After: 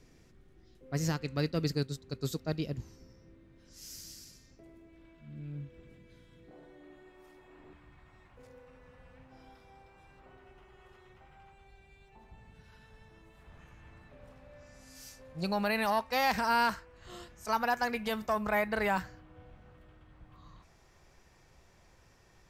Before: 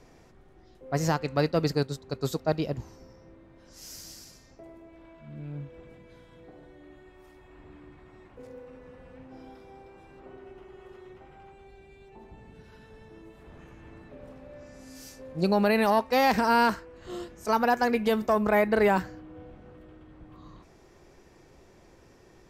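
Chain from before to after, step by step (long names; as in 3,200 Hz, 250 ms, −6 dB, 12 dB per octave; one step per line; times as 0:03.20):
parametric band 790 Hz −11.5 dB 1.6 octaves, from 0:06.51 66 Hz, from 0:07.73 340 Hz
level −2.5 dB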